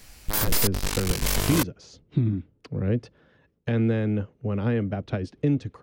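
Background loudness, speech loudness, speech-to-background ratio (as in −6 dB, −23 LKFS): −26.0 LKFS, −28.0 LKFS, −2.0 dB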